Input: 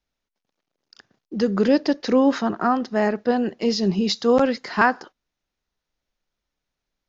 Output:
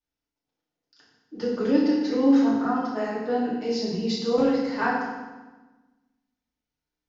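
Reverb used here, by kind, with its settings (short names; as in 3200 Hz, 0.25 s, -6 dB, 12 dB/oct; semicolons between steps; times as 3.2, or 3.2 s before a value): FDN reverb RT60 1.2 s, low-frequency decay 1.35×, high-frequency decay 0.85×, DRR -8 dB; gain -14.5 dB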